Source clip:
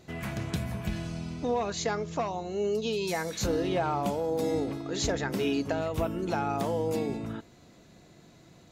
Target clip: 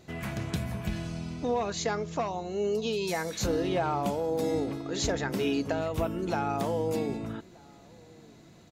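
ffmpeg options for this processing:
-filter_complex "[0:a]asplit=2[a][b];[b]adelay=1224,volume=-25dB,highshelf=f=4k:g=-27.6[c];[a][c]amix=inputs=2:normalize=0"

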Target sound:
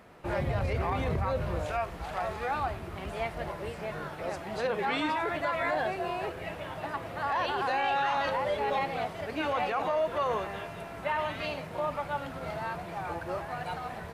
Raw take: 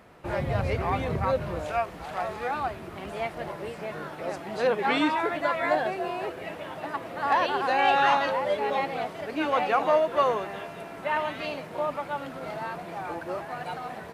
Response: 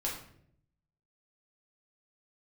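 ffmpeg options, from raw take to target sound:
-filter_complex "[0:a]asubboost=boost=4.5:cutoff=110,alimiter=limit=-20.5dB:level=0:latency=1:release=23,asplit=2[a][b];[1:a]atrim=start_sample=2205[c];[b][c]afir=irnorm=-1:irlink=0,volume=-16dB[d];[a][d]amix=inputs=2:normalize=0,volume=-2dB"

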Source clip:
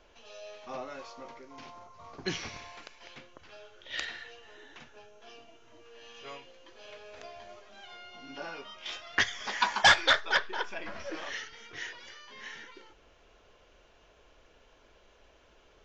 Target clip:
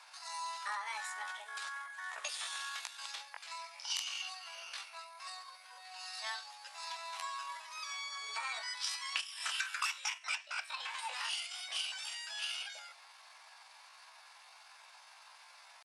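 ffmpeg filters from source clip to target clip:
-af "acompressor=threshold=-40dB:ratio=20,highpass=f=550:w=0.5412,highpass=f=550:w=1.3066,asetrate=70004,aresample=44100,atempo=0.629961,volume=7dB"

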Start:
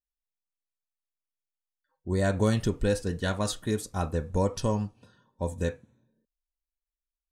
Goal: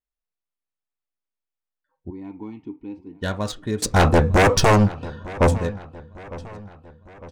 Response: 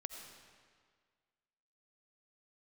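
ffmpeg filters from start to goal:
-filter_complex "[0:a]asplit=3[a][b][c];[a]afade=t=out:st=2.09:d=0.02[d];[b]asplit=3[e][f][g];[e]bandpass=f=300:t=q:w=8,volume=0dB[h];[f]bandpass=f=870:t=q:w=8,volume=-6dB[i];[g]bandpass=f=2.24k:t=q:w=8,volume=-9dB[j];[h][i][j]amix=inputs=3:normalize=0,afade=t=in:st=2.09:d=0.02,afade=t=out:st=3.21:d=0.02[k];[c]afade=t=in:st=3.21:d=0.02[l];[d][k][l]amix=inputs=3:normalize=0,asettb=1/sr,asplit=3[m][n][o];[m]atrim=end=3.824[p];[n]atrim=start=3.82:end=5.58,asetpts=PTS-STARTPTS,afade=t=in:d=0.004:c=qsin,afade=t=out:st=1.756:d=0.004:c=qsin,aeval=exprs='0.211*sin(PI/2*4.47*val(0)/0.211)':c=same[q];[o]atrim=start=5.576[r];[p][q]acrossfade=d=0.004:c1=hsin:c2=qsin[s];[s][r]acrossfade=d=0.004:c1=qsin:c2=hsin,asplit=2[t][u];[u]aecho=0:1:904|1808|2712|3616:0.119|0.0594|0.0297|0.0149[v];[t][v]amix=inputs=2:normalize=0,adynamicsmooth=sensitivity=5:basefreq=3.2k,volume=3dB"

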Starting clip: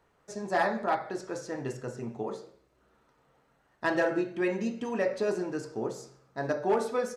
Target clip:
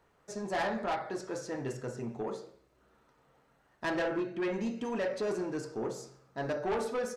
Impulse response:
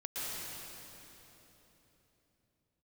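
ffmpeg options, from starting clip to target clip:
-filter_complex "[0:a]asettb=1/sr,asplit=3[a][b][c];[a]atrim=end=3.964[d];[b]atrim=start=3.96:end=4.54,asetpts=PTS-STARTPTS,afade=t=in:d=0.004:c=qsin,afade=t=out:st=0.576:d=0.004:c=qsin,highshelf=f=7.3k:g=-11.5[e];[c]atrim=start=4.536[f];[d][e]acrossfade=d=0.004:c1=hsin:c2=qsin[g];[g][f]acrossfade=d=0.004:c1=qsin:c2=hsin,asoftclip=type=tanh:threshold=-27.5dB"

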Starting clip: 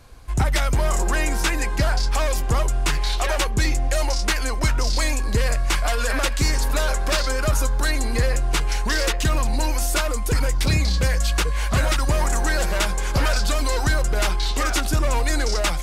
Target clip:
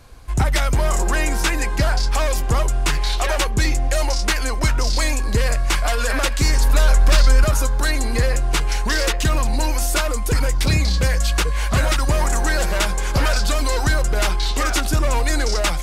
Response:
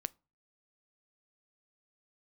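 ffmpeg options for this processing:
-filter_complex "[0:a]asettb=1/sr,asplit=3[a][b][c];[a]atrim=end=6.404[d];[b]atrim=start=6.4:end=7.44,asetpts=PTS-STARTPTS,afade=t=in:d=0.004:c=qsin,afade=t=out:st=1.036:d=0.004:c=qsin,asubboost=boost=9:cutoff=200[e];[c]atrim=start=7.436[f];[d][e]acrossfade=d=0.004:c1=hsin:c2=qsin[g];[g][f]acrossfade=d=0.004:c1=qsin:c2=hsin,volume=2dB"

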